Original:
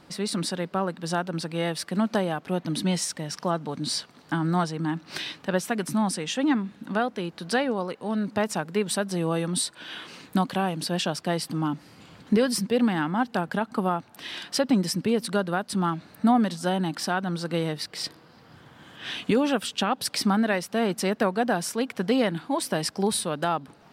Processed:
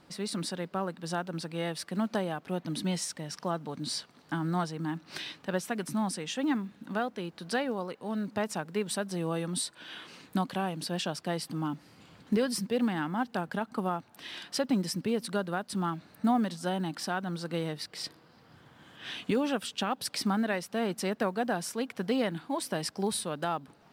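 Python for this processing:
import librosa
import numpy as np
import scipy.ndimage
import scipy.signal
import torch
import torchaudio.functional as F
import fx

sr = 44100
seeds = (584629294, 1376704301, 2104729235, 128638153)

y = fx.quant_companded(x, sr, bits=8)
y = y * librosa.db_to_amplitude(-6.0)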